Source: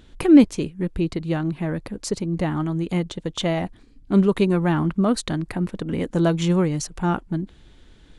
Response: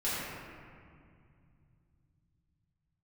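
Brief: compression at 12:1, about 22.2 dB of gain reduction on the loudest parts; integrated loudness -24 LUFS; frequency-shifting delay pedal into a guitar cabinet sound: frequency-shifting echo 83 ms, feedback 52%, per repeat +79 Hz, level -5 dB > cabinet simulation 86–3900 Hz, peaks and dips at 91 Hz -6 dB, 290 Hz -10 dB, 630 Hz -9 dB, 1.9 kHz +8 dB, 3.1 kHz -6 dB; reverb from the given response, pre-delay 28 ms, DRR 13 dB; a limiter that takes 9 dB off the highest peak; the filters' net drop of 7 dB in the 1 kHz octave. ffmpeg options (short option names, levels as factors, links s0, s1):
-filter_complex "[0:a]equalizer=f=1000:t=o:g=-7.5,acompressor=threshold=0.0316:ratio=12,alimiter=level_in=1.33:limit=0.0631:level=0:latency=1,volume=0.75,asplit=2[s0][s1];[1:a]atrim=start_sample=2205,adelay=28[s2];[s1][s2]afir=irnorm=-1:irlink=0,volume=0.0891[s3];[s0][s3]amix=inputs=2:normalize=0,asplit=8[s4][s5][s6][s7][s8][s9][s10][s11];[s5]adelay=83,afreqshift=79,volume=0.562[s12];[s6]adelay=166,afreqshift=158,volume=0.292[s13];[s7]adelay=249,afreqshift=237,volume=0.151[s14];[s8]adelay=332,afreqshift=316,volume=0.0794[s15];[s9]adelay=415,afreqshift=395,volume=0.0412[s16];[s10]adelay=498,afreqshift=474,volume=0.0214[s17];[s11]adelay=581,afreqshift=553,volume=0.0111[s18];[s4][s12][s13][s14][s15][s16][s17][s18]amix=inputs=8:normalize=0,highpass=86,equalizer=f=91:t=q:w=4:g=-6,equalizer=f=290:t=q:w=4:g=-10,equalizer=f=630:t=q:w=4:g=-9,equalizer=f=1900:t=q:w=4:g=8,equalizer=f=3100:t=q:w=4:g=-6,lowpass=f=3900:w=0.5412,lowpass=f=3900:w=1.3066,volume=4.47"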